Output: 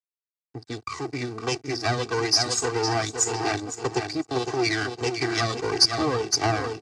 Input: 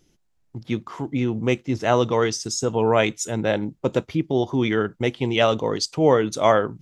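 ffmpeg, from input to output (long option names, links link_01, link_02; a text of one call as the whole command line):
ffmpeg -i in.wav -filter_complex "[0:a]afftfilt=real='re*pow(10,16/40*sin(2*PI*(0.76*log(max(b,1)*sr/1024/100)/log(2)-(-1.7)*(pts-256)/sr)))':imag='im*pow(10,16/40*sin(2*PI*(0.76*log(max(b,1)*sr/1024/100)/log(2)-(-1.7)*(pts-256)/sr)))':win_size=1024:overlap=0.75,acrossover=split=400[link_01][link_02];[link_01]acompressor=threshold=-29dB:ratio=6[link_03];[link_03][link_02]amix=inputs=2:normalize=0,acrusher=bits=9:mix=0:aa=0.000001,asplit=2[link_04][link_05];[link_05]adelay=509,lowpass=frequency=4100:poles=1,volume=-7dB,asplit=2[link_06][link_07];[link_07]adelay=509,lowpass=frequency=4100:poles=1,volume=0.36,asplit=2[link_08][link_09];[link_09]adelay=509,lowpass=frequency=4100:poles=1,volume=0.36,asplit=2[link_10][link_11];[link_11]adelay=509,lowpass=frequency=4100:poles=1,volume=0.36[link_12];[link_06][link_08][link_10][link_12]amix=inputs=4:normalize=0[link_13];[link_04][link_13]amix=inputs=2:normalize=0,aeval=exprs='max(val(0),0)':channel_layout=same,acrossover=split=360[link_14][link_15];[link_15]acompressor=threshold=-24dB:ratio=10[link_16];[link_14][link_16]amix=inputs=2:normalize=0,aeval=exprs='sgn(val(0))*max(abs(val(0))-0.00531,0)':channel_layout=same,highpass=frequency=100:width=0.5412,highpass=frequency=100:width=1.3066,equalizer=frequency=520:width_type=q:width=4:gain=-7,equalizer=frequency=3300:width_type=q:width=4:gain=-7,equalizer=frequency=4800:width_type=q:width=4:gain=8,lowpass=frequency=7800:width=0.5412,lowpass=frequency=7800:width=1.3066,aecho=1:1:2.6:0.96,adynamicequalizer=threshold=0.00562:dfrequency=4100:dqfactor=0.7:tfrequency=4100:tqfactor=0.7:attack=5:release=100:ratio=0.375:range=4:mode=boostabove:tftype=highshelf" out.wav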